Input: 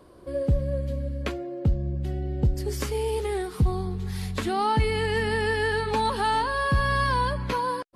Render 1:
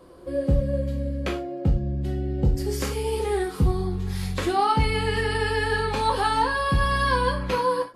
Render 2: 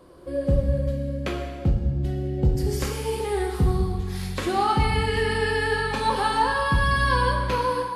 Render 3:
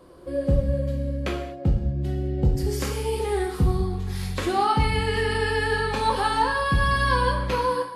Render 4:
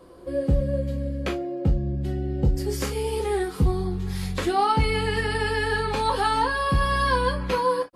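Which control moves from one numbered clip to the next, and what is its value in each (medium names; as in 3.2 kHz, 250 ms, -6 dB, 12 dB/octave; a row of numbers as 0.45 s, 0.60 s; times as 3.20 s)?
gated-style reverb, gate: 130 ms, 440 ms, 260 ms, 80 ms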